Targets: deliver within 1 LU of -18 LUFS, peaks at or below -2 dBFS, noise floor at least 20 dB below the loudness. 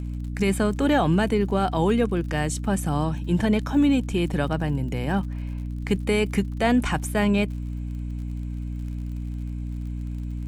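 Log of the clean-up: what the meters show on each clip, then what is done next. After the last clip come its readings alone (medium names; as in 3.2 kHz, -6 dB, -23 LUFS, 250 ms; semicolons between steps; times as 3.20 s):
tick rate 48 per s; hum 60 Hz; highest harmonic 300 Hz; hum level -28 dBFS; loudness -25.0 LUFS; peak level -10.0 dBFS; loudness target -18.0 LUFS
-> de-click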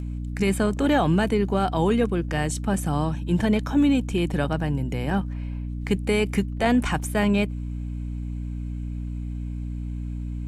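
tick rate 0.29 per s; hum 60 Hz; highest harmonic 300 Hz; hum level -28 dBFS
-> de-hum 60 Hz, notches 5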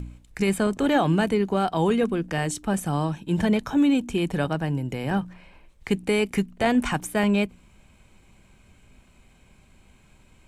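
hum not found; loudness -24.5 LUFS; peak level -10.0 dBFS; loudness target -18.0 LUFS
-> trim +6.5 dB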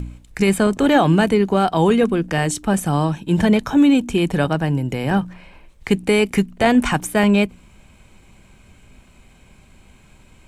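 loudness -18.0 LUFS; peak level -3.5 dBFS; noise floor -50 dBFS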